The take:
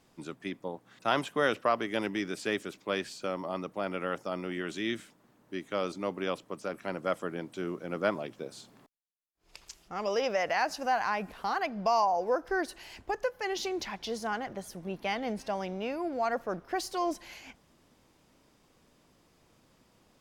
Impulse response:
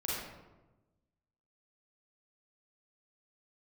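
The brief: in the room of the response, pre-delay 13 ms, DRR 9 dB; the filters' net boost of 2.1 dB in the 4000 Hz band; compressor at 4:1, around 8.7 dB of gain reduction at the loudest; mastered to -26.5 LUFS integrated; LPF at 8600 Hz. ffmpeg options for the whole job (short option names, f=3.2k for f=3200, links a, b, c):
-filter_complex "[0:a]lowpass=8.6k,equalizer=f=4k:t=o:g=3,acompressor=threshold=-32dB:ratio=4,asplit=2[a][b];[1:a]atrim=start_sample=2205,adelay=13[c];[b][c]afir=irnorm=-1:irlink=0,volume=-13.5dB[d];[a][d]amix=inputs=2:normalize=0,volume=10.5dB"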